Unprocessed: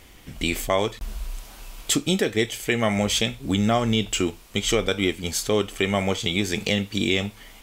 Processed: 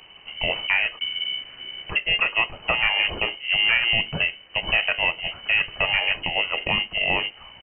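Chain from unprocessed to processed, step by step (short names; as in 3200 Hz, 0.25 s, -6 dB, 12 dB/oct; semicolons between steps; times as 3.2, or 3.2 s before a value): inverted band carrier 3000 Hz; harmoniser -5 st -10 dB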